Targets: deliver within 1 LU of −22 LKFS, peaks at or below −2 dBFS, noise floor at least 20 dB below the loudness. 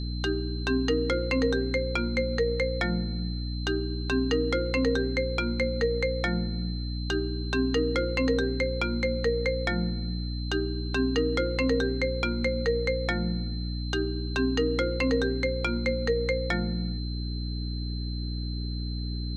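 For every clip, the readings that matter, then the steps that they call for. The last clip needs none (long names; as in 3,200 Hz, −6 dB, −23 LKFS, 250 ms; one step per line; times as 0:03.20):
mains hum 60 Hz; hum harmonics up to 300 Hz; level of the hum −29 dBFS; interfering tone 4,100 Hz; level of the tone −41 dBFS; integrated loudness −28.0 LKFS; sample peak −14.0 dBFS; target loudness −22.0 LKFS
→ mains-hum notches 60/120/180/240/300 Hz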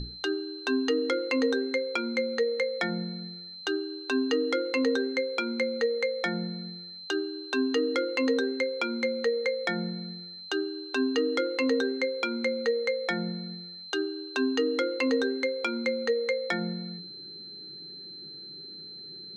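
mains hum none found; interfering tone 4,100 Hz; level of the tone −41 dBFS
→ notch filter 4,100 Hz, Q 30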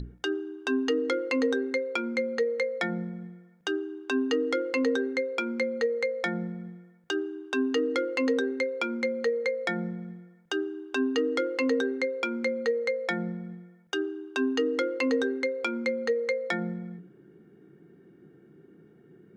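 interfering tone none found; integrated loudness −29.0 LKFS; sample peak −15.5 dBFS; target loudness −22.0 LKFS
→ level +7 dB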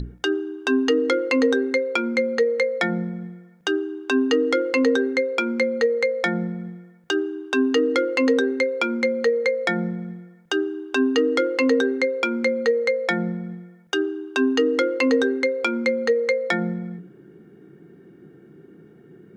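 integrated loudness −22.0 LKFS; sample peak −8.5 dBFS; background noise floor −50 dBFS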